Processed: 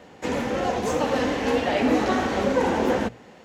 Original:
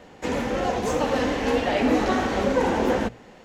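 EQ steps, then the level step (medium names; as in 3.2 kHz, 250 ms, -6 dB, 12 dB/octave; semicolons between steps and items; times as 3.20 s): high-pass 66 Hz; 0.0 dB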